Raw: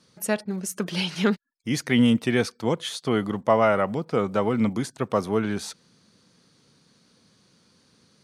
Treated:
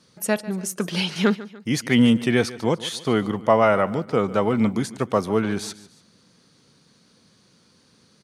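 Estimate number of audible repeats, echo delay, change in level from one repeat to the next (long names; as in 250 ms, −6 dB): 2, 146 ms, −7.0 dB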